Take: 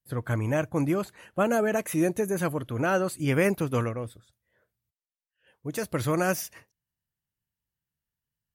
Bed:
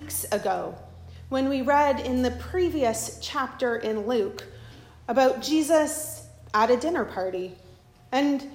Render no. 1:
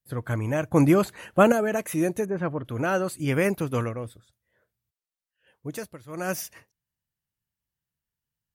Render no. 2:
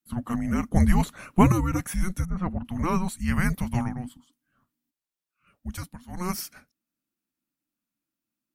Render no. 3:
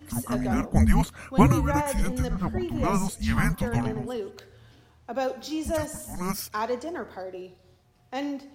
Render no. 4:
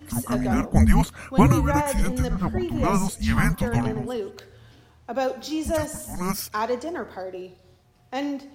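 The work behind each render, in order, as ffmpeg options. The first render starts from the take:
-filter_complex "[0:a]asettb=1/sr,asplit=3[s0][s1][s2];[s0]atrim=end=2.254[s3];[s1]atrim=start=2.25:end=2.65,asetpts=PTS-STARTPTS,afade=t=in:d=0.004:c=qsin,afade=t=out:st=0.396:d=0.004:c=qsin,lowpass=1800[s4];[s2]atrim=start=2.646[s5];[s3][s4]acrossfade=d=0.004:c1=hsin:c2=qsin[s6];[s6][s5]acrossfade=d=0.004:c1=qsin:c2=hsin,asplit=5[s7][s8][s9][s10][s11];[s7]atrim=end=0.712[s12];[s8]atrim=start=0.708:end=1.522,asetpts=PTS-STARTPTS,volume=2.37[s13];[s9]atrim=start=1.518:end=5.99,asetpts=PTS-STARTPTS,afade=t=out:st=4.152:d=0.32:silence=0.0944061[s14];[s10]atrim=start=5.99:end=6.07,asetpts=PTS-STARTPTS,volume=0.0944[s15];[s11]atrim=start=6.07,asetpts=PTS-STARTPTS,afade=t=in:d=0.32:silence=0.0944061[s16];[s12][s13]acrossfade=d=0.004:c1=hsin:c2=hsin[s17];[s14][s15][s16]concat=n=3:v=0:a=1[s18];[s17][s18]acrossfade=d=0.004:c1=hsin:c2=hsin"
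-af "afreqshift=-360"
-filter_complex "[1:a]volume=0.398[s0];[0:a][s0]amix=inputs=2:normalize=0"
-af "volume=1.41,alimiter=limit=0.708:level=0:latency=1"

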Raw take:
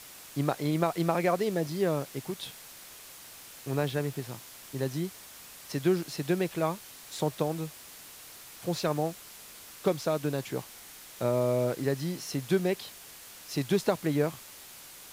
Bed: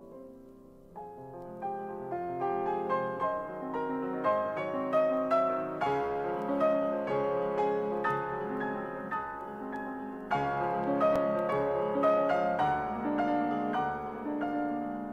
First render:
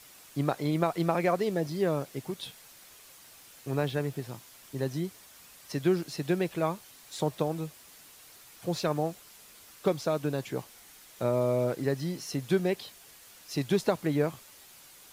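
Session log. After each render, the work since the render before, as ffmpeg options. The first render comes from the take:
-af "afftdn=nr=6:nf=-49"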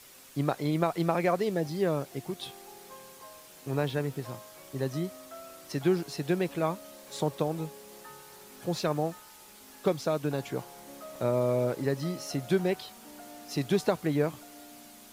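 -filter_complex "[1:a]volume=0.112[s0];[0:a][s0]amix=inputs=2:normalize=0"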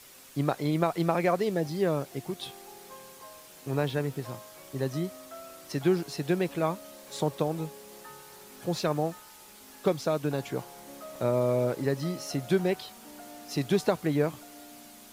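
-af "volume=1.12"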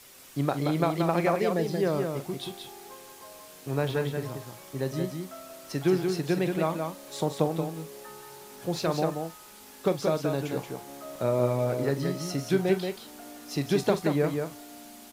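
-filter_complex "[0:a]asplit=2[s0][s1];[s1]adelay=43,volume=0.211[s2];[s0][s2]amix=inputs=2:normalize=0,aecho=1:1:179:0.562"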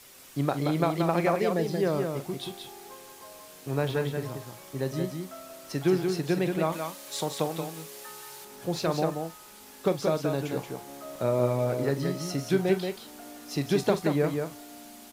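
-filter_complex "[0:a]asettb=1/sr,asplit=3[s0][s1][s2];[s0]atrim=end=6.724[s3];[s1]atrim=start=6.72:end=8.45,asetpts=PTS-STARTPTS,afade=t=in:d=0.004:c=qsin,afade=t=out:st=1.726:d=0.004:c=qsin,tiltshelf=f=970:g=-5.5[s4];[s2]atrim=start=8.446[s5];[s3][s4]acrossfade=d=0.004:c1=hsin:c2=qsin[s6];[s6][s5]acrossfade=d=0.004:c1=qsin:c2=hsin"

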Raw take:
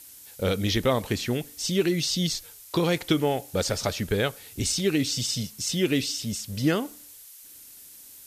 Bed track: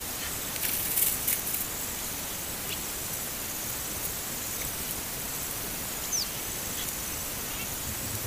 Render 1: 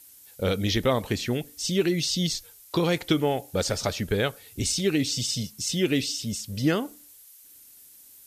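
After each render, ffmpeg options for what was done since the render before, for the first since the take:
-af "afftdn=nr=6:nf=-48"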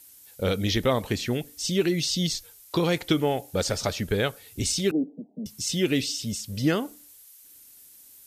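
-filter_complex "[0:a]asettb=1/sr,asplit=3[s0][s1][s2];[s0]atrim=end=4.914[s3];[s1]atrim=start=4.91:end=5.46,asetpts=PTS-STARTPTS,afade=t=in:d=0.004:c=qsin,afade=t=out:st=0.546:d=0.004:c=qsin,asuperpass=centerf=370:order=20:qfactor=0.56[s4];[s2]atrim=start=5.456[s5];[s3][s4]acrossfade=d=0.004:c1=hsin:c2=qsin[s6];[s6][s5]acrossfade=d=0.004:c1=qsin:c2=hsin"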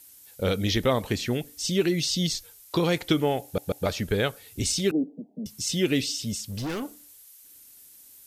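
-filter_complex "[0:a]asettb=1/sr,asplit=3[s0][s1][s2];[s0]atrim=end=6.424[s3];[s1]atrim=start=6.42:end=6.83,asetpts=PTS-STARTPTS,afade=t=in:d=0.004:c=qsin,afade=t=out:st=0.406:d=0.004:c=qsin,asoftclip=type=hard:threshold=0.0376[s4];[s2]atrim=start=6.826[s5];[s3][s4]acrossfade=d=0.004:c1=hsin:c2=qsin[s6];[s6][s5]acrossfade=d=0.004:c1=qsin:c2=hsin,asplit=4[s7][s8][s9][s10];[s7]atrim=end=3.582[s11];[s8]atrim=start=3.438:end=3.582[s12];[s9]atrim=start=3.438:end=3.582[s13];[s10]atrim=start=3.858[s14];[s11][s12]acrossfade=d=0.004:c1=hsin:c2=hsin[s15];[s15][s13]acrossfade=d=0.004:c1=hsin:c2=hsin[s16];[s16][s14]acrossfade=d=0.004:c1=hsin:c2=hsin"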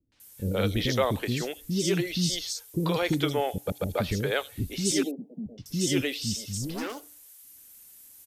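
-filter_complex "[0:a]acrossover=split=350|4400[s0][s1][s2];[s1]adelay=120[s3];[s2]adelay=200[s4];[s0][s3][s4]amix=inputs=3:normalize=0"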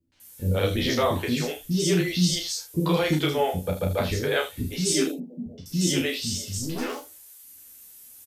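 -filter_complex "[0:a]asplit=2[s0][s1];[s1]adelay=12,volume=0.708[s2];[s0][s2]amix=inputs=2:normalize=0,aecho=1:1:33|76:0.562|0.237"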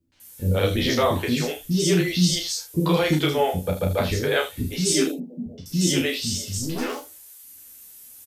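-af "volume=1.33"

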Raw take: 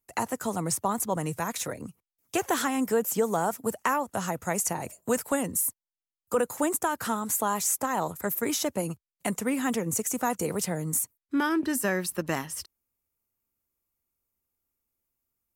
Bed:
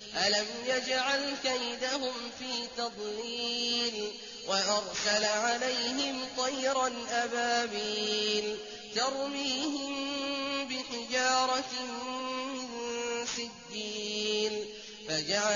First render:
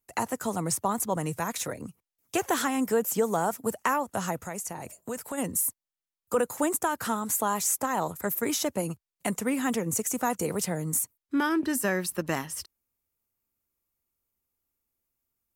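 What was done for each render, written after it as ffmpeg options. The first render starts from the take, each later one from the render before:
-filter_complex "[0:a]asplit=3[s0][s1][s2];[s0]afade=t=out:st=4.4:d=0.02[s3];[s1]acompressor=threshold=0.0141:ratio=2:attack=3.2:release=140:knee=1:detection=peak,afade=t=in:st=4.4:d=0.02,afade=t=out:st=5.37:d=0.02[s4];[s2]afade=t=in:st=5.37:d=0.02[s5];[s3][s4][s5]amix=inputs=3:normalize=0"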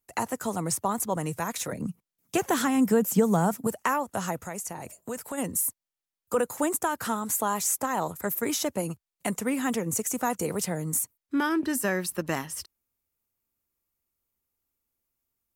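-filter_complex "[0:a]asettb=1/sr,asplit=3[s0][s1][s2];[s0]atrim=end=1.724[s3];[s1]atrim=start=1.72:end=3.67,asetpts=PTS-STARTPTS,afade=t=in:d=0.004:c=qsin,afade=t=out:st=1.946:d=0.004:c=qsin,equalizer=f=180:w=1.5:g=12[s4];[s2]atrim=start=3.666[s5];[s3][s4]acrossfade=d=0.004:c1=hsin:c2=qsin[s6];[s6][s5]acrossfade=d=0.004:c1=qsin:c2=hsin"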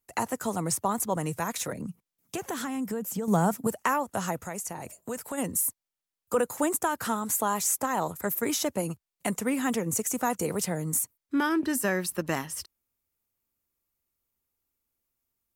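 -filter_complex "[0:a]asettb=1/sr,asplit=3[s0][s1][s2];[s0]atrim=end=1.724[s3];[s1]atrim=start=1.72:end=3.28,asetpts=PTS-STARTPTS,afade=t=in:d=0.004:c=qsin,afade=t=out:st=1.556:d=0.004:c=qsin,acompressor=threshold=0.0224:ratio=2.5:attack=3.2:release=140:knee=1:detection=peak[s4];[s2]atrim=start=3.276[s5];[s3][s4]acrossfade=d=0.004:c1=hsin:c2=qsin[s6];[s6][s5]acrossfade=d=0.004:c1=qsin:c2=hsin"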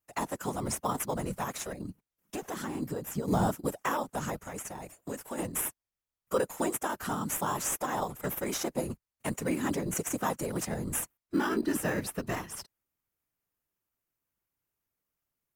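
-filter_complex "[0:a]afftfilt=real='hypot(re,im)*cos(2*PI*random(0))':imag='hypot(re,im)*sin(2*PI*random(1))':win_size=512:overlap=0.75,asplit=2[s0][s1];[s1]acrusher=samples=10:mix=1:aa=0.000001,volume=0.376[s2];[s0][s2]amix=inputs=2:normalize=0"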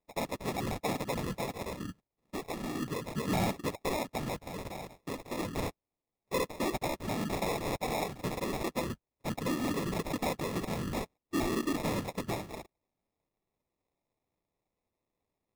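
-af "acrusher=samples=29:mix=1:aa=0.000001,asoftclip=type=tanh:threshold=0.0631"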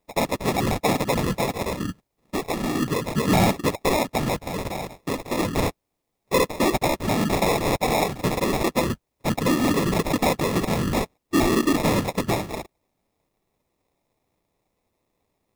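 -af "volume=3.76"

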